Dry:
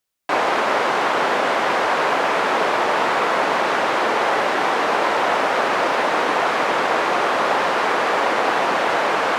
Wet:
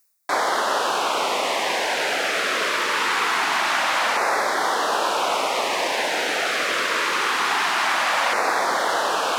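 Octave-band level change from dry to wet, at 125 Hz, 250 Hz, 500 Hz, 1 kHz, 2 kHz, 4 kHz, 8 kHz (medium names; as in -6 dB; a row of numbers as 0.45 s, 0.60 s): no reading, -7.5 dB, -5.5 dB, -3.5 dB, -1.0 dB, +3.0 dB, +6.5 dB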